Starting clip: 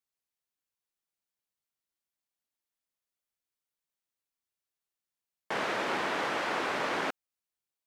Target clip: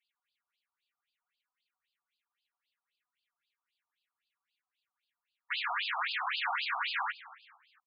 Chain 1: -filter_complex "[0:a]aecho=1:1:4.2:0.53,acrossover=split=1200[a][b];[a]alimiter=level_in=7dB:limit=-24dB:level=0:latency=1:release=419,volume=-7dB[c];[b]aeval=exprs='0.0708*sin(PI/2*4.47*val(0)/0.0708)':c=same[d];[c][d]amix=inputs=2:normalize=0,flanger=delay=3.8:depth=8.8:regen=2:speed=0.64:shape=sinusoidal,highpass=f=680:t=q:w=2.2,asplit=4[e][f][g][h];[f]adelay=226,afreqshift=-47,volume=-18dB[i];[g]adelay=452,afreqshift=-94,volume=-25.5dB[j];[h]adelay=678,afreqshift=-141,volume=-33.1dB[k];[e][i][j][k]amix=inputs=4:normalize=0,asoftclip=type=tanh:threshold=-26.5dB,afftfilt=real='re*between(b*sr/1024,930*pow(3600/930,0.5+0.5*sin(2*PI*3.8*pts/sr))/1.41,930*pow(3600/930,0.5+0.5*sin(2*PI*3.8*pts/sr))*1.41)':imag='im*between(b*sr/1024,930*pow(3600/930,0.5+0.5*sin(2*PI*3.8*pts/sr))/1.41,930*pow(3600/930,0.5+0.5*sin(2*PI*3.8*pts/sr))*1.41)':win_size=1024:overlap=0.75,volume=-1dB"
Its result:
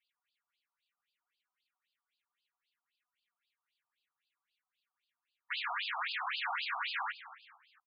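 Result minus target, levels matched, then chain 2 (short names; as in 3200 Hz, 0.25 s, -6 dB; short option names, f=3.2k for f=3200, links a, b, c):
soft clip: distortion +14 dB
-filter_complex "[0:a]aecho=1:1:4.2:0.53,acrossover=split=1200[a][b];[a]alimiter=level_in=7dB:limit=-24dB:level=0:latency=1:release=419,volume=-7dB[c];[b]aeval=exprs='0.0708*sin(PI/2*4.47*val(0)/0.0708)':c=same[d];[c][d]amix=inputs=2:normalize=0,flanger=delay=3.8:depth=8.8:regen=2:speed=0.64:shape=sinusoidal,highpass=f=680:t=q:w=2.2,asplit=4[e][f][g][h];[f]adelay=226,afreqshift=-47,volume=-18dB[i];[g]adelay=452,afreqshift=-94,volume=-25.5dB[j];[h]adelay=678,afreqshift=-141,volume=-33.1dB[k];[e][i][j][k]amix=inputs=4:normalize=0,asoftclip=type=tanh:threshold=-16.5dB,afftfilt=real='re*between(b*sr/1024,930*pow(3600/930,0.5+0.5*sin(2*PI*3.8*pts/sr))/1.41,930*pow(3600/930,0.5+0.5*sin(2*PI*3.8*pts/sr))*1.41)':imag='im*between(b*sr/1024,930*pow(3600/930,0.5+0.5*sin(2*PI*3.8*pts/sr))/1.41,930*pow(3600/930,0.5+0.5*sin(2*PI*3.8*pts/sr))*1.41)':win_size=1024:overlap=0.75,volume=-1dB"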